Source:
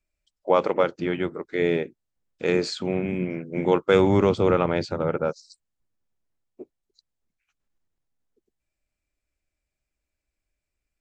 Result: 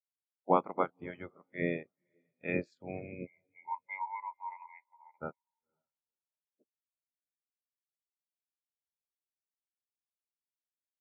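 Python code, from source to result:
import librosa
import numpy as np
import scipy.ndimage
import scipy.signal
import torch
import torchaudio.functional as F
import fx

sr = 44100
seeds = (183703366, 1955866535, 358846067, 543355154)

y = fx.spec_clip(x, sr, under_db=18)
y = fx.double_bandpass(y, sr, hz=1400.0, octaves=1.1, at=(3.26, 5.2), fade=0.02)
y = fx.echo_diffused(y, sr, ms=511, feedback_pct=43, wet_db=-16)
y = fx.spectral_expand(y, sr, expansion=2.5)
y = y * librosa.db_to_amplitude(-7.5)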